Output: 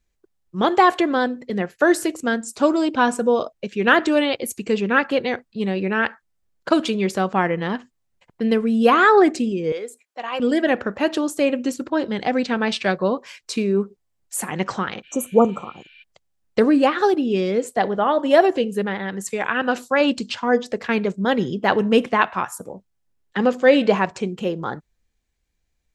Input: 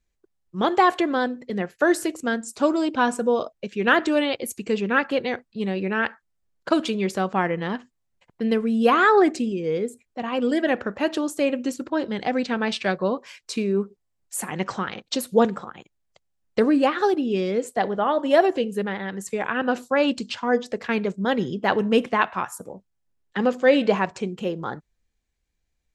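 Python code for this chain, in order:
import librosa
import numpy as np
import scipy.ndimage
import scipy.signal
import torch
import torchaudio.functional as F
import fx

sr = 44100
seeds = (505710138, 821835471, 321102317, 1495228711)

y = fx.highpass(x, sr, hz=630.0, slope=12, at=(9.72, 10.4))
y = fx.spec_repair(y, sr, seeds[0], start_s=15.06, length_s=0.95, low_hz=1400.0, high_hz=5800.0, source='before')
y = fx.tilt_shelf(y, sr, db=-3.0, hz=970.0, at=(19.24, 20.01))
y = y * librosa.db_to_amplitude(3.0)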